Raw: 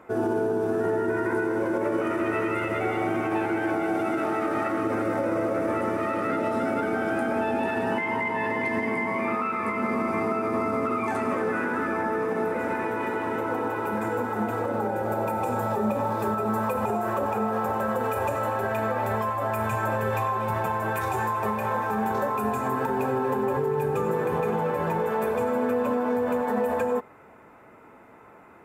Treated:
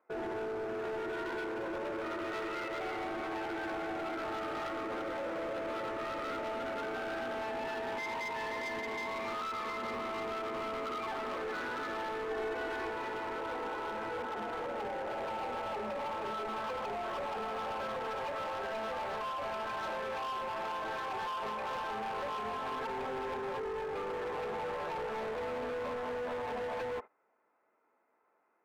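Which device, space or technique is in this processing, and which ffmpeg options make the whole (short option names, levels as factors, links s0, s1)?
walkie-talkie: -filter_complex "[0:a]highpass=400,lowpass=2500,asoftclip=type=hard:threshold=0.0335,agate=range=0.141:threshold=0.01:ratio=16:detection=peak,asettb=1/sr,asplit=3[s0][s1][s2];[s0]atrim=end=12.294[s3];[s1]atrim=start=12.29:end=12.91,asetpts=PTS-STARTPTS,afade=t=in:d=0.004:c=qsin,afade=t=out:st=0.616:d=0.004:c=qsin,aecho=1:1:2.7:0.65,atrim=end_sample=27342[s4];[s2]atrim=start=12.906[s5];[s3][s4]acrossfade=d=0.004:c1=hsin:c2=qsin[s6];[s6][s5]acrossfade=d=0.004:c1=qsin:c2=hsin,volume=0.531"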